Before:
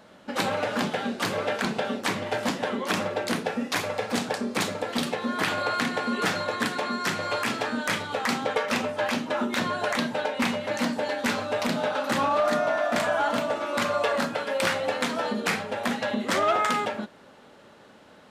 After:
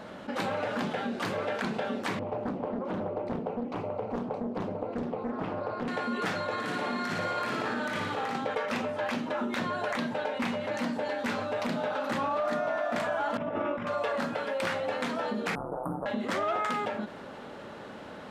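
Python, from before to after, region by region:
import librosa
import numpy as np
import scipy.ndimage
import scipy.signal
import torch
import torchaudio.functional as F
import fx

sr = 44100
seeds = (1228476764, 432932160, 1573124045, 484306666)

y = fx.chain(x, sr, fx.moving_average(points=26),
    fx.doppler_dist(depth_ms=0.97), at=(2.19, 5.88))
y = fx.chain(y, sr, fx.over_compress(threshold_db=-29.0, ratio=-0.5),
    fx.room_flutter(wall_m=9.9, rt60_s=0.89), at=(6.52, 8.36))
y = fx.chain(y, sr, fx.savgol(points=25),
    fx.low_shelf(hz=310.0, db=11.5),
    fx.over_compress(threshold_db=-28.0, ratio=-0.5), at=(13.37, 13.87))
y = fx.chain(y, sr, fx.cheby1_bandstop(low_hz=1300.0, high_hz=9100.0, order=5),
    fx.ring_mod(carrier_hz=66.0), at=(15.55, 16.06))
y = fx.high_shelf(y, sr, hz=3700.0, db=-9.5)
y = fx.env_flatten(y, sr, amount_pct=50)
y = F.gain(torch.from_numpy(y), -7.0).numpy()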